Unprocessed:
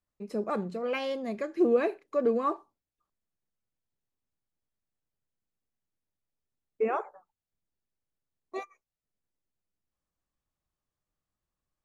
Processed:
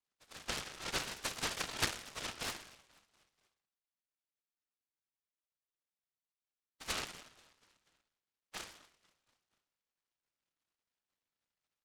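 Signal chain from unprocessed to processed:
Butterworth low-pass 1,900 Hz 72 dB per octave
downward compressor, threshold −27 dBFS, peak gain reduction 8.5 dB
phase-vocoder pitch shift with formants kept +11 semitones
Chebyshev high-pass with heavy ripple 1,300 Hz, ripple 9 dB
repeating echo 242 ms, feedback 55%, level −23.5 dB
feedback delay network reverb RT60 0.74 s, high-frequency decay 0.75×, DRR 3 dB
short delay modulated by noise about 1,500 Hz, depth 0.21 ms
level +14.5 dB

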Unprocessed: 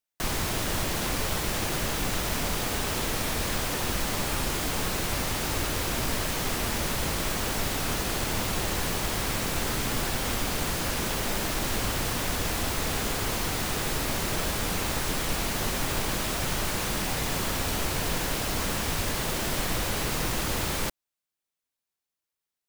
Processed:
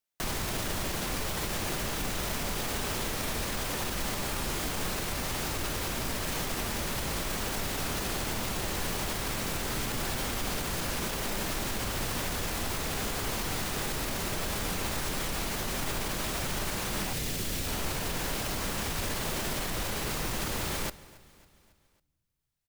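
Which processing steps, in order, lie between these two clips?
0:17.13–0:17.67: parametric band 1,000 Hz −11 dB 1.5 octaves
brickwall limiter −23 dBFS, peak gain reduction 8 dB
repeating echo 275 ms, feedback 55%, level −22 dB
on a send at −18 dB: convolution reverb RT60 1.4 s, pre-delay 5 ms

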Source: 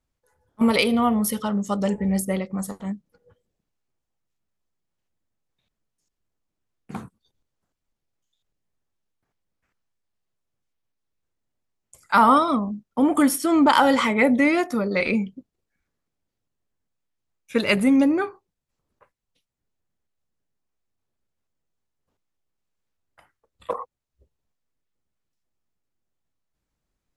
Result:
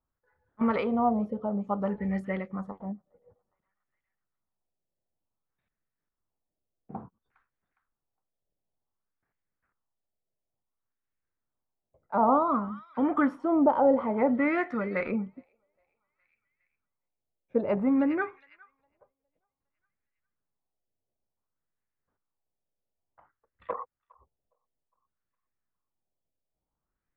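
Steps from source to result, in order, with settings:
delay with a high-pass on its return 410 ms, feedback 34%, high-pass 1,900 Hz, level −17 dB
auto-filter low-pass sine 0.56 Hz 600–1,900 Hz
level −7.5 dB

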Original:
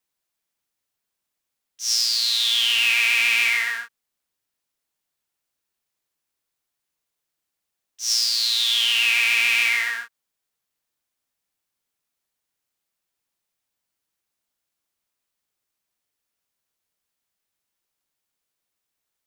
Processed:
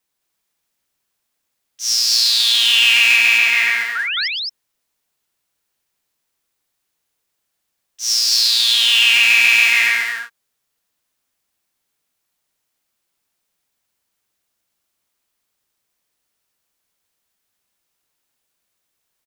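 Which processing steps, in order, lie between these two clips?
soft clipping −10.5 dBFS, distortion −22 dB
0:03.16–0:03.78: parametric band 11,000 Hz −5.5 dB 2.2 octaves
0:03.95–0:04.28: sound drawn into the spectrogram rise 1,300–5,500 Hz −27 dBFS
on a send: loudspeakers that aren't time-aligned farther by 40 metres −10 dB, 74 metres −2 dB
on the sum: level +5 dB

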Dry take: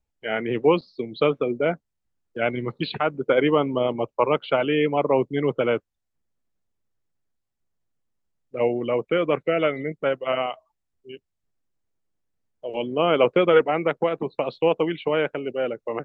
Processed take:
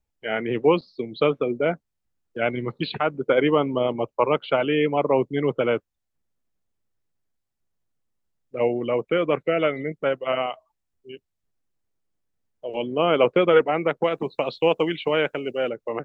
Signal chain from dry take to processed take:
0:14.04–0:15.69: high-shelf EQ 3,300 Hz +10.5 dB

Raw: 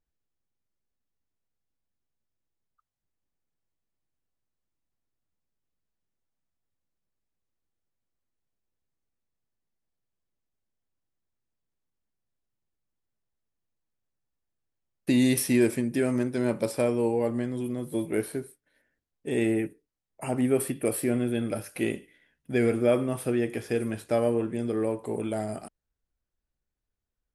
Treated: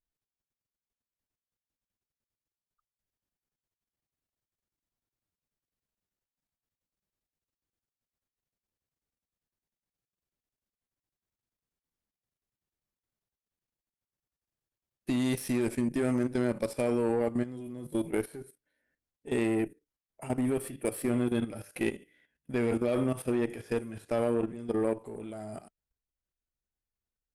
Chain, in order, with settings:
harmonic and percussive parts rebalanced harmonic +5 dB
harmonic generator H 4 −21 dB, 6 −19 dB, 7 −31 dB, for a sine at −7 dBFS
output level in coarse steps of 13 dB
level −1.5 dB

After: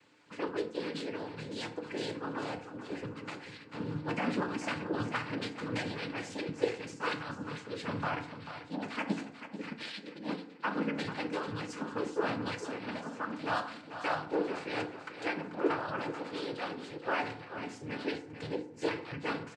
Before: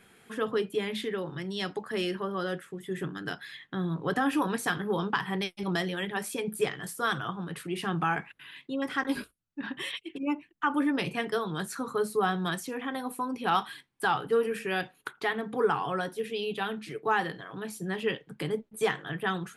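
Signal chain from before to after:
cochlear-implant simulation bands 8
on a send: repeating echo 439 ms, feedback 42%, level −11 dB
on the sum: feedback delay network reverb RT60 0.69 s, low-frequency decay 1×, high-frequency decay 0.5×, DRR 7 dB
level −6 dB
MP3 64 kbit/s 32,000 Hz

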